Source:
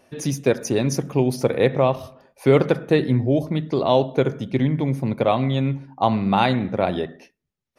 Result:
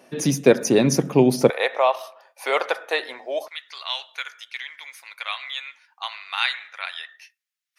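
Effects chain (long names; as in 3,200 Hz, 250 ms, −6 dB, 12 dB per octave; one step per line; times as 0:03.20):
high-pass filter 150 Hz 24 dB per octave, from 0:01.50 670 Hz, from 0:03.48 1,500 Hz
level +4.5 dB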